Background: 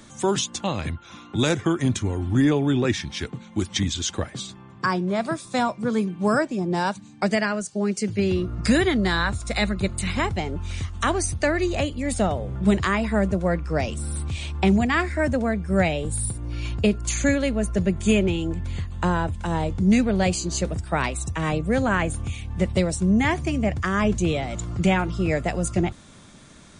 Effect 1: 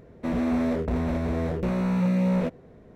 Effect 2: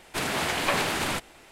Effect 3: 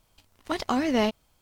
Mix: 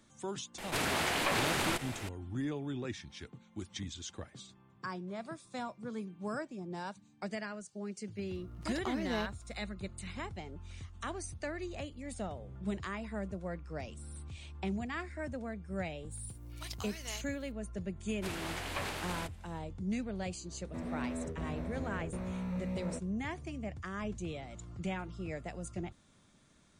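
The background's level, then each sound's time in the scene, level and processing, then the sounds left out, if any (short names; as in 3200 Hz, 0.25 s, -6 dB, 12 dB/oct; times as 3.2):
background -17.5 dB
0.58 add 2 -7.5 dB + fast leveller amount 50%
8.16 add 3 -12.5 dB
16.11 add 3 -3.5 dB + differentiator
18.08 add 2 -13 dB
20.5 add 1 -14 dB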